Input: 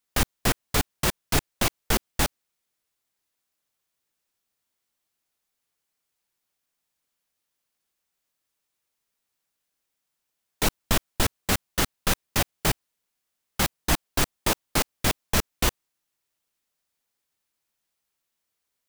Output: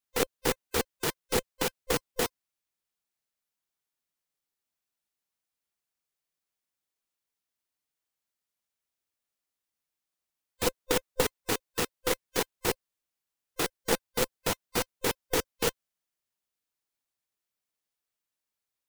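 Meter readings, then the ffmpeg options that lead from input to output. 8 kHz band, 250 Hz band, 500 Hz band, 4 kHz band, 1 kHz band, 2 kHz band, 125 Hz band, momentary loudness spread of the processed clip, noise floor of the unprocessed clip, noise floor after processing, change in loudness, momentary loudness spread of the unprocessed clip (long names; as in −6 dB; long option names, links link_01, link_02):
−5.5 dB, −5.5 dB, +2.0 dB, −5.5 dB, −5.0 dB, −5.5 dB, −11.0 dB, 4 LU, −81 dBFS, below −85 dBFS, −4.5 dB, 3 LU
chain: -af "afftfilt=real='real(if(between(b,1,1008),(2*floor((b-1)/24)+1)*24-b,b),0)':imag='imag(if(between(b,1,1008),(2*floor((b-1)/24)+1)*24-b,b),0)*if(between(b,1,1008),-1,1)':win_size=2048:overlap=0.75,aeval=exprs='0.447*(cos(1*acos(clip(val(0)/0.447,-1,1)))-cos(1*PI/2))+0.0891*(cos(3*acos(clip(val(0)/0.447,-1,1)))-cos(3*PI/2))':channel_layout=same"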